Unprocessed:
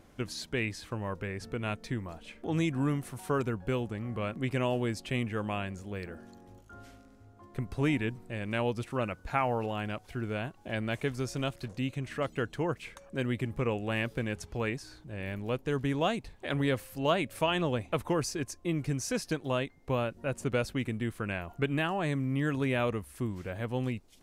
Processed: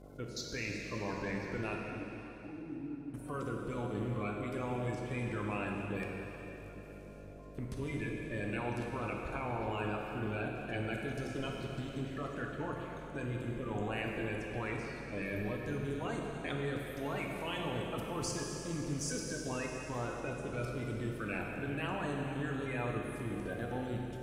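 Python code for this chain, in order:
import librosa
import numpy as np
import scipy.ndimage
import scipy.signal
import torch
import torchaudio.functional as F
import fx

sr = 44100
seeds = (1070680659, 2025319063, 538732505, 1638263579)

y = fx.spec_quant(x, sr, step_db=30)
y = fx.level_steps(y, sr, step_db=20)
y = fx.dmg_buzz(y, sr, base_hz=50.0, harmonics=14, level_db=-54.0, tilt_db=-4, odd_only=False)
y = fx.formant_cascade(y, sr, vowel='u', at=(1.77, 3.14))
y = fx.rev_plate(y, sr, seeds[0], rt60_s=3.5, hf_ratio=1.0, predelay_ms=0, drr_db=-1.0)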